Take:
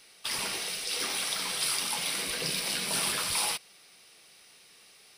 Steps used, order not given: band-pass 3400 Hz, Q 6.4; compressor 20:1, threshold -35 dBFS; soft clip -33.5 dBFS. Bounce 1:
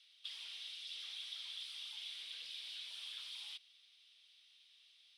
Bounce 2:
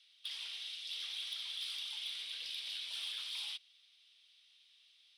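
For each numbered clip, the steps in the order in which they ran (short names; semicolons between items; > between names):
soft clip > compressor > band-pass; band-pass > soft clip > compressor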